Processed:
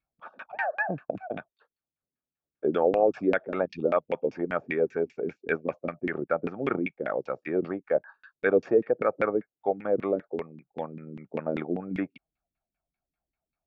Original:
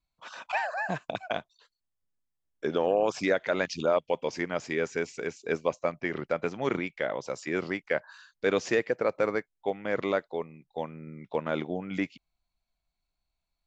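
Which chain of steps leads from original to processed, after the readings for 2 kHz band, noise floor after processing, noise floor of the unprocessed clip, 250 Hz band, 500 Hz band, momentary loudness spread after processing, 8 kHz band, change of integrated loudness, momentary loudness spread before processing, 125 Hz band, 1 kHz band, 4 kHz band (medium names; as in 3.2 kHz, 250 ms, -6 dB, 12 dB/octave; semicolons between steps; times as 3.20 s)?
-1.0 dB, under -85 dBFS, -84 dBFS, +2.5 dB, +2.0 dB, 13 LU, no reading, +1.5 dB, 9 LU, 0.0 dB, +0.5 dB, under -10 dB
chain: comb of notches 1 kHz; LFO low-pass saw down 5.1 Hz 210–2500 Hz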